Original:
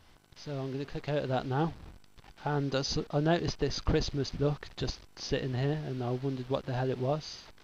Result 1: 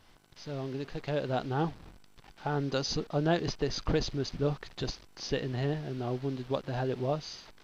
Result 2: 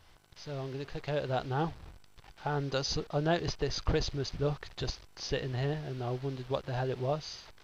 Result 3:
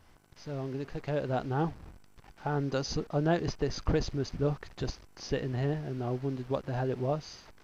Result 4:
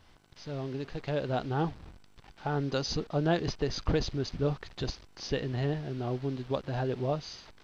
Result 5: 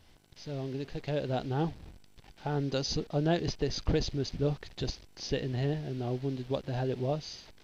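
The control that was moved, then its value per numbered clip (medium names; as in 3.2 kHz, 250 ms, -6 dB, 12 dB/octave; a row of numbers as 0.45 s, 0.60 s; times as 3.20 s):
peaking EQ, frequency: 68 Hz, 240 Hz, 3.7 kHz, 13 kHz, 1.2 kHz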